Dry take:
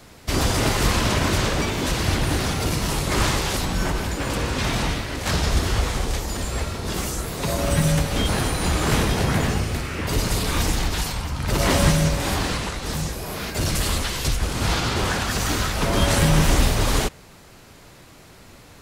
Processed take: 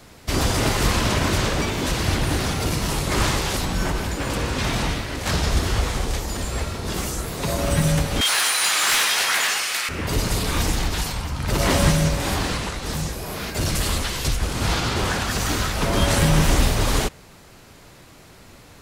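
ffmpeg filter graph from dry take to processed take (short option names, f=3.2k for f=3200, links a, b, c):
-filter_complex "[0:a]asettb=1/sr,asplit=3[a][b][c];[a]atrim=end=8.214[d];[b]atrim=start=8.21:end=9.89,asetpts=PTS-STARTPTS,afade=t=in:d=0.004:c=qsin,afade=t=out:st=1.676:d=0.004:c=qsin,highpass=1.5k,aeval=exprs='0.2*sin(PI/2*2.24*val(0)/0.2)':c=same[e];[c]atrim=start=9.886[f];[d][e]acrossfade=d=0.004:c1=hsin:c2=qsin[g];[g][f]acrossfade=d=0.004:c1=qsin:c2=hsin"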